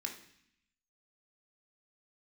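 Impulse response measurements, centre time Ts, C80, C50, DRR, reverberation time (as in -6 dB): 20 ms, 12.0 dB, 8.5 dB, 1.5 dB, 0.65 s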